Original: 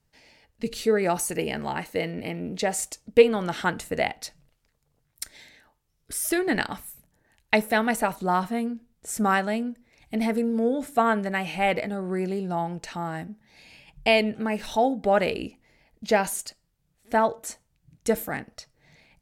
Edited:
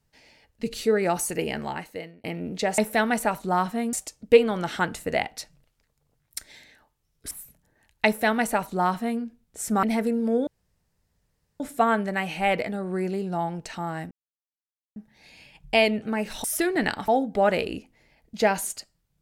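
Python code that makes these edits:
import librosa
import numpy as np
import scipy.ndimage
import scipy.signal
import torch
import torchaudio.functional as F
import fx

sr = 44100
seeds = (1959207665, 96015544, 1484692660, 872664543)

y = fx.edit(x, sr, fx.fade_out_span(start_s=1.58, length_s=0.66),
    fx.move(start_s=6.16, length_s=0.64, to_s=14.77),
    fx.duplicate(start_s=7.55, length_s=1.15, to_s=2.78),
    fx.cut(start_s=9.32, length_s=0.82),
    fx.insert_room_tone(at_s=10.78, length_s=1.13),
    fx.insert_silence(at_s=13.29, length_s=0.85), tone=tone)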